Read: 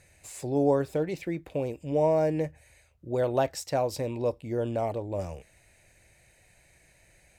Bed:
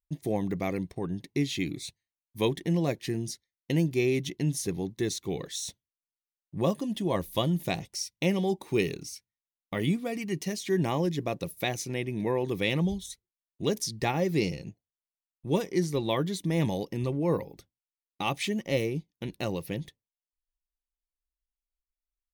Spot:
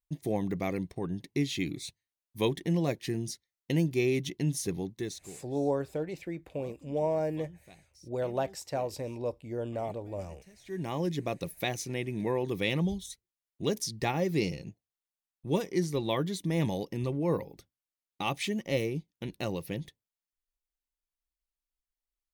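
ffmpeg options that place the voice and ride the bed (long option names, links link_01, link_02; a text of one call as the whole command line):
ffmpeg -i stem1.wav -i stem2.wav -filter_complex "[0:a]adelay=5000,volume=-5.5dB[link_01];[1:a]volume=21.5dB,afade=type=out:start_time=4.74:duration=0.67:silence=0.0668344,afade=type=in:start_time=10.58:duration=0.54:silence=0.0707946[link_02];[link_01][link_02]amix=inputs=2:normalize=0" out.wav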